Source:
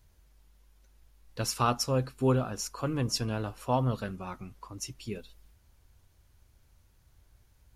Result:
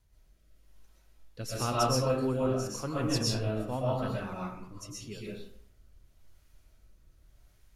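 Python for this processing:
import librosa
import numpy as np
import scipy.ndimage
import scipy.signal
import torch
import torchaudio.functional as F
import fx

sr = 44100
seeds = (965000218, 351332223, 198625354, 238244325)

y = fx.rotary(x, sr, hz=0.9)
y = fx.rev_freeverb(y, sr, rt60_s=0.62, hf_ratio=0.6, predelay_ms=85, drr_db=-5.5)
y = F.gain(torch.from_numpy(y), -3.5).numpy()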